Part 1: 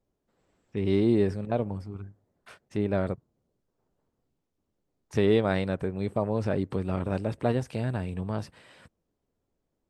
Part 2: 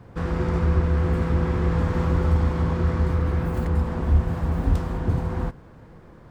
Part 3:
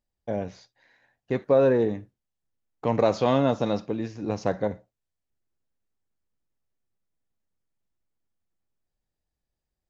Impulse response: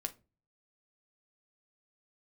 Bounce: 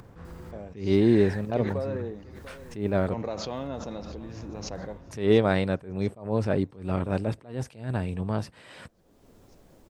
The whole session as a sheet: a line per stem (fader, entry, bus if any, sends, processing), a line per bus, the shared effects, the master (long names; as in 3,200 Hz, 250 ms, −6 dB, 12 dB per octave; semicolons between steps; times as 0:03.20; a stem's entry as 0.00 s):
+2.5 dB, 0.00 s, send −23 dB, no echo send, no processing
−19.0 dB, 0.00 s, no send, no echo send, brickwall limiter −18.5 dBFS, peak gain reduction 10.5 dB; automatic ducking −8 dB, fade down 0.20 s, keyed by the first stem
−13.0 dB, 0.25 s, no send, echo send −18.5 dB, background raised ahead of every attack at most 22 dB per second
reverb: on, pre-delay 7 ms
echo: repeating echo 694 ms, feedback 55%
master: upward compression, threshold −36 dBFS; level that may rise only so fast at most 140 dB per second